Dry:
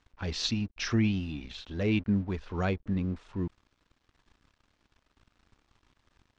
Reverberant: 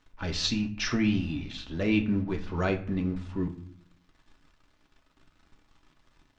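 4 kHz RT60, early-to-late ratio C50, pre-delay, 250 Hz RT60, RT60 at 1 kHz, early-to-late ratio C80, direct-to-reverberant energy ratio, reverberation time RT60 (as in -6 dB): 0.35 s, 13.0 dB, 3 ms, 0.90 s, 0.45 s, 17.0 dB, 2.5 dB, 0.50 s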